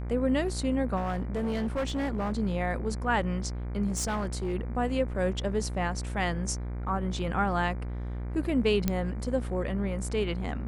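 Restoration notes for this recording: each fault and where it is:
mains buzz 60 Hz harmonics 40 −34 dBFS
0:00.96–0:02.33: clipping −26 dBFS
0:03.87–0:04.55: clipping −26 dBFS
0:08.88: click −12 dBFS

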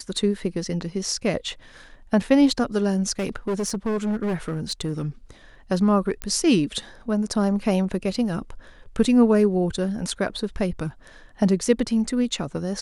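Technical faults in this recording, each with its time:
0:03.19–0:05.06: clipping −21 dBFS
0:06.22: click −12 dBFS

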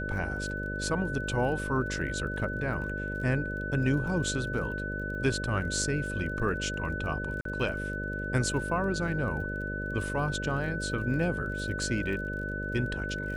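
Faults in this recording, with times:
mains buzz 50 Hz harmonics 12 −36 dBFS
surface crackle 28 per second −40 dBFS
whistle 1,500 Hz −35 dBFS
0:07.41–0:07.45: drop-out 43 ms

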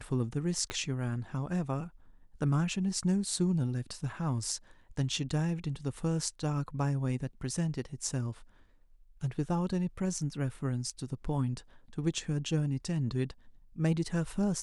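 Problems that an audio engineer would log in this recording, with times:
0:00.70: click −19 dBFS

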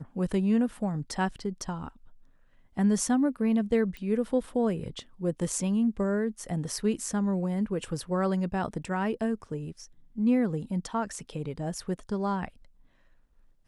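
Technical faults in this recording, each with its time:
0:03.97: click −27 dBFS

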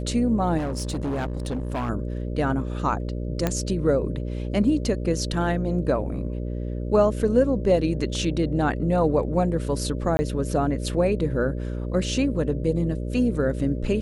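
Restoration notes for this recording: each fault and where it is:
mains buzz 60 Hz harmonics 10 −29 dBFS
0:00.57–0:01.90: clipping −23.5 dBFS
0:03.47: click −9 dBFS
0:10.17–0:10.19: drop-out 20 ms

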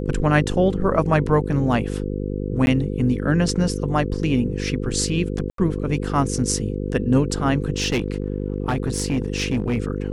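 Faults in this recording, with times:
mains buzz 50 Hz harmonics 10 −26 dBFS
0:02.66–0:02.67: drop-out 11 ms
0:05.50–0:05.58: drop-out 83 ms
0:07.70–0:09.78: clipping −16.5 dBFS

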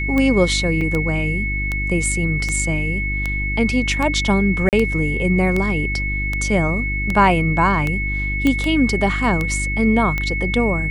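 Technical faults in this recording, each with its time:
mains hum 50 Hz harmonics 7 −24 dBFS
scratch tick 78 rpm −9 dBFS
whistle 2,200 Hz −23 dBFS
0:00.81: drop-out 4.1 ms
0:04.69–0:04.73: drop-out 38 ms
0:08.47: click −7 dBFS

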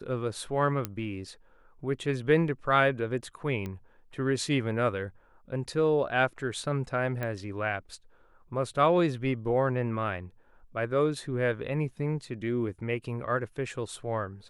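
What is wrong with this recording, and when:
0:00.85: click −15 dBFS
0:03.66: click −23 dBFS
0:07.23: click −20 dBFS

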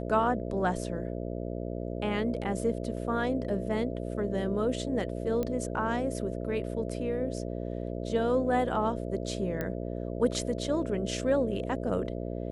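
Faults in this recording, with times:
mains buzz 60 Hz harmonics 11 −35 dBFS
0:05.43: click −19 dBFS
0:09.61: click −19 dBFS

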